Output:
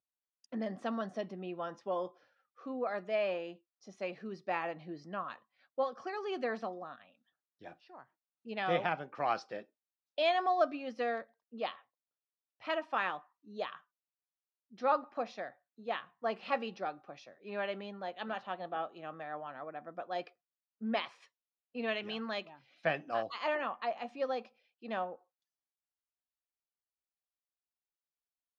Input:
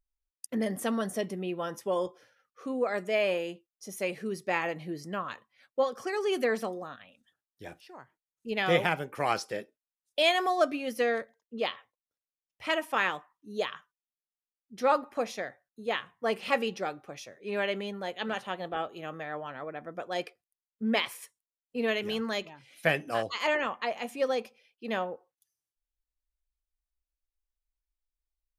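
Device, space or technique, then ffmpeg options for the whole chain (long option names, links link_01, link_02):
kitchen radio: -filter_complex "[0:a]highpass=160,equalizer=frequency=430:width_type=q:width=4:gain=-5,equalizer=frequency=720:width_type=q:width=4:gain=5,equalizer=frequency=1200:width_type=q:width=4:gain=3,equalizer=frequency=2100:width_type=q:width=4:gain=-5,equalizer=frequency=3200:width_type=q:width=4:gain=-4,lowpass=frequency=4600:width=0.5412,lowpass=frequency=4600:width=1.3066,asettb=1/sr,asplit=3[link_01][link_02][link_03];[link_01]atrim=end=21.204[link_04];[link_02]atrim=start=21.2:end=22.43,asetpts=PTS-STARTPTS,afade=type=in:duration=0.004:curve=qsin,afade=type=out:start_time=1.226:duration=0.004:curve=qsin,equalizer=frequency=2700:width=1.2:gain=4.5[link_05];[link_03]atrim=start=22.426[link_06];[link_04][link_05]acrossfade=duration=0.004:curve1=hsin:curve2=qsin[link_07];[link_07][link_06]acrossfade=duration=0.004:curve1=qsin:curve2=hsin,volume=-6dB"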